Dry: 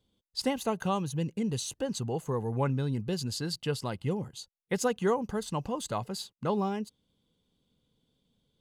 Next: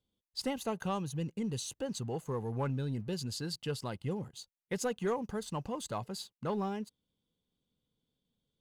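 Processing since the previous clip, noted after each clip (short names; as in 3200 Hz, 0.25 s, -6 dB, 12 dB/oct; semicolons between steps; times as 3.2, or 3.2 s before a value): sample leveller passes 1; gain -8 dB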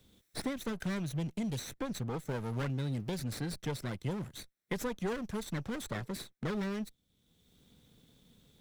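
minimum comb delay 0.53 ms; three-band squash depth 70%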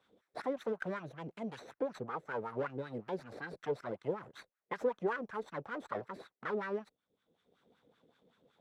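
wah 5.3 Hz 430–1500 Hz, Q 3; gain +9 dB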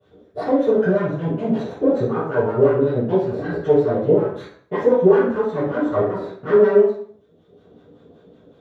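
reverb RT60 0.55 s, pre-delay 3 ms, DRR -18.5 dB; gain -5.5 dB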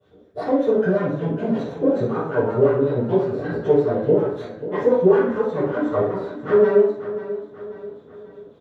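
feedback echo 0.538 s, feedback 47%, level -13 dB; gain -1.5 dB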